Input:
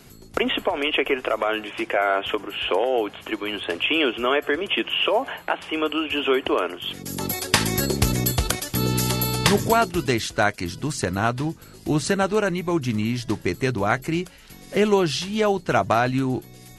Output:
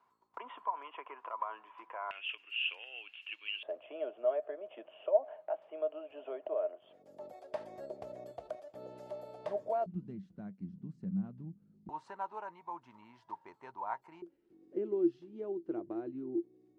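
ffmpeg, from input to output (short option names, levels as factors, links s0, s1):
-af "asetnsamples=n=441:p=0,asendcmd='2.11 bandpass f 2700;3.63 bandpass f 620;9.86 bandpass f 190;11.89 bandpass f 930;14.22 bandpass f 340',bandpass=f=1000:t=q:w=17:csg=0"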